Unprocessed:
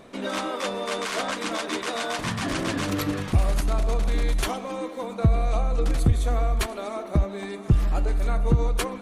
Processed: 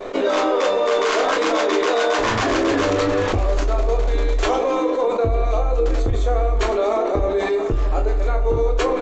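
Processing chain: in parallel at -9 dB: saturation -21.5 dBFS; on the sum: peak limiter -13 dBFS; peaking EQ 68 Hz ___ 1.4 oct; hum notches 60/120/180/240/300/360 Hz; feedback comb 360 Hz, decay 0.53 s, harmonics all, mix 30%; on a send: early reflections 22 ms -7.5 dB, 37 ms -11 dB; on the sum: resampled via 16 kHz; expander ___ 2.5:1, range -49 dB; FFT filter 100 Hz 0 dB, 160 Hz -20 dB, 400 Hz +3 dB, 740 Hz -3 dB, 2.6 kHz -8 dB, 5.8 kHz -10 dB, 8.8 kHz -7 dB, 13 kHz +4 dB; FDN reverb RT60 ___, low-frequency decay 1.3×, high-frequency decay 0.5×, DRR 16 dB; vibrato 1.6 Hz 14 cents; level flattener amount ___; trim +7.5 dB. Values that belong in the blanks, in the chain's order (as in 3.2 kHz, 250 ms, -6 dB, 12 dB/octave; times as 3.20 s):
-14 dB, -33 dBFS, 0.64 s, 70%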